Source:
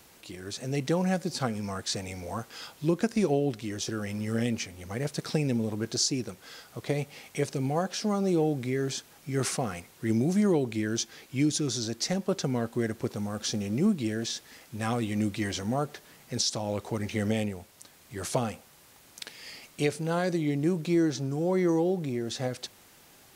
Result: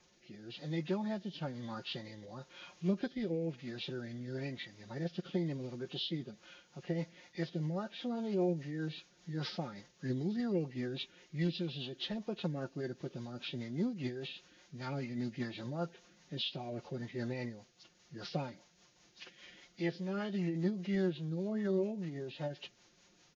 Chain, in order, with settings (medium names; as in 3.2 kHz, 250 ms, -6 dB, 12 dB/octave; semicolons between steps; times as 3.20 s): knee-point frequency compression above 1.4 kHz 1.5:1; comb 6.5 ms, depth 48%; rotary cabinet horn 1 Hz, later 5 Hz, at 6.11 s; formant-preserving pitch shift +2.5 st; trim -8 dB